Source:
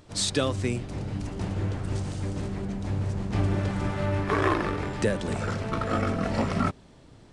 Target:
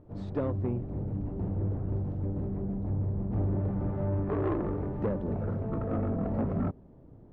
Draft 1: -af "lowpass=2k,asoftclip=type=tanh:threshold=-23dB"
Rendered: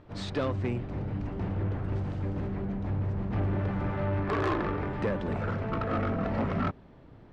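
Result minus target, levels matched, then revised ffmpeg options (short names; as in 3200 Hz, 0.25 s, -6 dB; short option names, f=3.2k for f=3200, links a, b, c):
2000 Hz band +13.0 dB
-af "lowpass=600,asoftclip=type=tanh:threshold=-23dB"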